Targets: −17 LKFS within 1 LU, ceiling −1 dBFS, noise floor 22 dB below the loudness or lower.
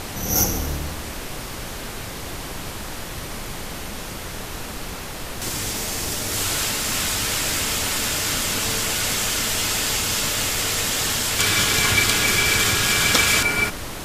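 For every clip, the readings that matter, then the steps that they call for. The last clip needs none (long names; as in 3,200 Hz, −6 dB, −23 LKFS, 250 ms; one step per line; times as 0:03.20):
background noise floor −33 dBFS; target noise floor −42 dBFS; integrated loudness −19.5 LKFS; sample peak −2.0 dBFS; target loudness −17.0 LKFS
→ noise reduction from a noise print 9 dB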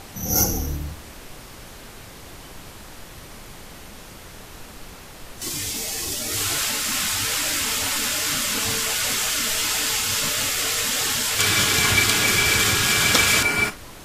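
background noise floor −42 dBFS; integrated loudness −19.5 LKFS; sample peak −2.0 dBFS; target loudness −17.0 LKFS
→ level +2.5 dB
brickwall limiter −1 dBFS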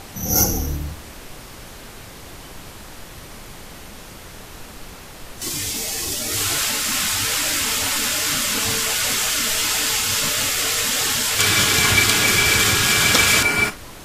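integrated loudness −17.0 LKFS; sample peak −1.0 dBFS; background noise floor −39 dBFS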